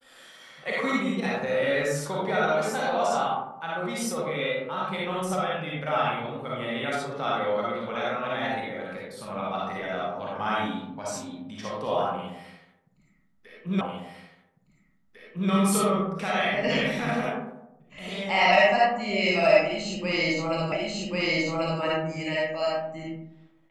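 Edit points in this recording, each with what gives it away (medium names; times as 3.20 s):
13.81 s: repeat of the last 1.7 s
20.72 s: repeat of the last 1.09 s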